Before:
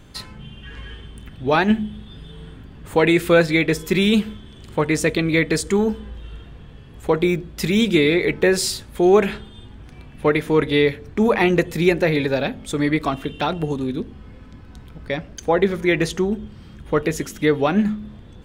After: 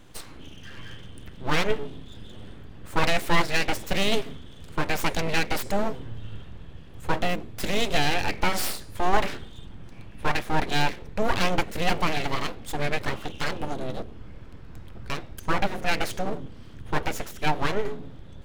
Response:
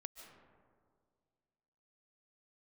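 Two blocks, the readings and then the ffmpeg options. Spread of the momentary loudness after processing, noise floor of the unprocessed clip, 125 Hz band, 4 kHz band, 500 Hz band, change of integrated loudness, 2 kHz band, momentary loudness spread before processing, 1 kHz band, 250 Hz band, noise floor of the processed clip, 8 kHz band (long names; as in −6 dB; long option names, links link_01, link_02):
20 LU, −42 dBFS, −7.5 dB, −2.5 dB, −11.5 dB, −8.0 dB, −5.0 dB, 19 LU, −1.0 dB, −13.0 dB, −43 dBFS, −5.0 dB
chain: -af "asubboost=boost=2:cutoff=86,bandreject=frequency=373.6:width_type=h:width=4,bandreject=frequency=747.2:width_type=h:width=4,bandreject=frequency=1120.8:width_type=h:width=4,bandreject=frequency=1494.4:width_type=h:width=4,bandreject=frequency=1868:width_type=h:width=4,bandreject=frequency=2241.6:width_type=h:width=4,bandreject=frequency=2615.2:width_type=h:width=4,bandreject=frequency=2988.8:width_type=h:width=4,bandreject=frequency=3362.4:width_type=h:width=4,bandreject=frequency=3736:width_type=h:width=4,bandreject=frequency=4109.6:width_type=h:width=4,bandreject=frequency=4483.2:width_type=h:width=4,bandreject=frequency=4856.8:width_type=h:width=4,bandreject=frequency=5230.4:width_type=h:width=4,bandreject=frequency=5604:width_type=h:width=4,bandreject=frequency=5977.6:width_type=h:width=4,bandreject=frequency=6351.2:width_type=h:width=4,bandreject=frequency=6724.8:width_type=h:width=4,bandreject=frequency=7098.4:width_type=h:width=4,bandreject=frequency=7472:width_type=h:width=4,bandreject=frequency=7845.6:width_type=h:width=4,bandreject=frequency=8219.2:width_type=h:width=4,bandreject=frequency=8592.8:width_type=h:width=4,bandreject=frequency=8966.4:width_type=h:width=4,bandreject=frequency=9340:width_type=h:width=4,bandreject=frequency=9713.6:width_type=h:width=4,bandreject=frequency=10087.2:width_type=h:width=4,bandreject=frequency=10460.8:width_type=h:width=4,bandreject=frequency=10834.4:width_type=h:width=4,bandreject=frequency=11208:width_type=h:width=4,bandreject=frequency=11581.6:width_type=h:width=4,bandreject=frequency=11955.2:width_type=h:width=4,aeval=exprs='abs(val(0))':channel_layout=same,volume=-3dB"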